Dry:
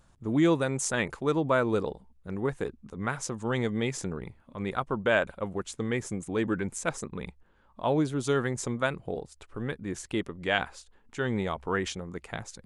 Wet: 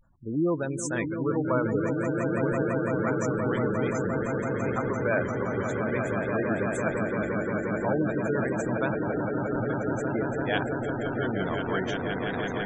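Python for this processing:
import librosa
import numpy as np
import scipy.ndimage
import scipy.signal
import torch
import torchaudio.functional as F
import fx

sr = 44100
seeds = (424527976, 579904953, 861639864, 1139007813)

y = fx.echo_swell(x, sr, ms=172, loudest=8, wet_db=-7.0)
y = fx.vibrato(y, sr, rate_hz=0.5, depth_cents=51.0)
y = fx.spec_gate(y, sr, threshold_db=-20, keep='strong')
y = F.gain(torch.from_numpy(y), -2.5).numpy()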